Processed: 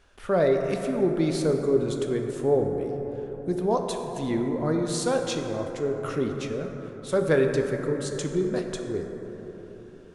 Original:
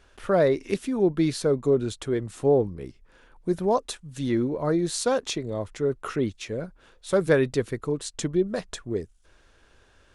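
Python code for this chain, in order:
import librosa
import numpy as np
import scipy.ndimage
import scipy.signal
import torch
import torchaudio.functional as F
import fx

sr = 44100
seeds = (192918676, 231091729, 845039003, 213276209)

y = fx.rev_plate(x, sr, seeds[0], rt60_s=4.1, hf_ratio=0.3, predelay_ms=0, drr_db=3.0)
y = y * 10.0 ** (-2.5 / 20.0)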